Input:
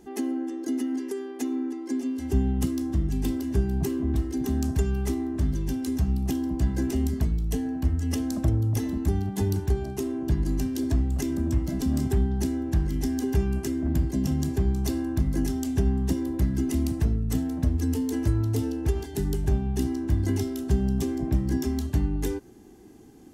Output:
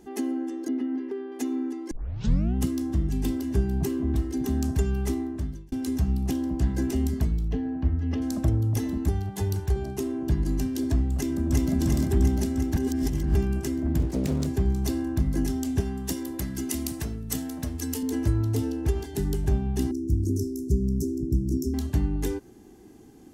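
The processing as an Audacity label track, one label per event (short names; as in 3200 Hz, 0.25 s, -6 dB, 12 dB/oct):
0.680000	1.320000	air absorption 360 m
1.910000	1.910000	tape start 0.64 s
5.170000	5.720000	fade out
6.260000	6.750000	Doppler distortion depth 0.18 ms
7.480000	8.220000	air absorption 290 m
9.090000	9.760000	bell 250 Hz -13.5 dB 0.64 oct
11.150000	11.700000	echo throw 0.35 s, feedback 70%, level 0 dB
12.760000	13.350000	reverse
13.980000	14.470000	Doppler distortion depth 1 ms
15.800000	18.030000	tilt +2.5 dB/oct
19.910000	21.740000	elliptic band-stop 400–5700 Hz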